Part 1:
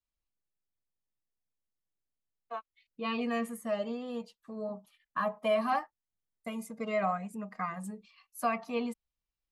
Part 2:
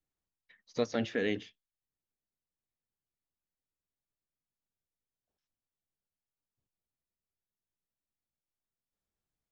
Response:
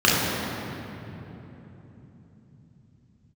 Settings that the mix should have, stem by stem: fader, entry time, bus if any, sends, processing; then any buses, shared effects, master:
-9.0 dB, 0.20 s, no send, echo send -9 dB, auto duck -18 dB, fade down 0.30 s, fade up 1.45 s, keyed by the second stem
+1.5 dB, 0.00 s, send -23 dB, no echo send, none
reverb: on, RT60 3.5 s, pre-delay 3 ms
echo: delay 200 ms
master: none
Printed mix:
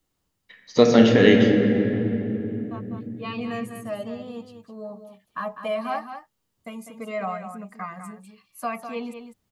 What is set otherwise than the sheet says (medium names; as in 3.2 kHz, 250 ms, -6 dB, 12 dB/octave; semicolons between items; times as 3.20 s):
stem 1 -9.0 dB -> +1.0 dB; stem 2 +1.5 dB -> +13.5 dB